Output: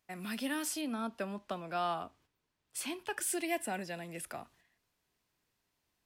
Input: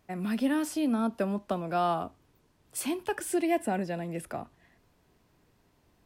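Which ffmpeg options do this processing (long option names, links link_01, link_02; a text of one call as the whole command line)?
ffmpeg -i in.wav -filter_complex "[0:a]asettb=1/sr,asplit=3[link_01][link_02][link_03];[link_01]atrim=end=0.814[link_04];[link_02]atrim=start=0.81:end=3.17,asetpts=PTS-STARTPTS,afade=type=in:duration=0.004:curve=qsin,afade=type=out:start_time=2.356:duration=0.004:curve=qsin,lowpass=frequency=3800:poles=1[link_05];[link_03]atrim=start=3.166[link_06];[link_04][link_05]acrossfade=duration=0.004:curve1=hsin:curve2=qsin[link_07];[link_07][link_06]acrossfade=duration=0.004:curve1=qsin:curve2=hsin,agate=range=-9dB:threshold=-58dB:ratio=16:detection=peak,tiltshelf=frequency=1200:gain=-7,volume=-4dB" out.wav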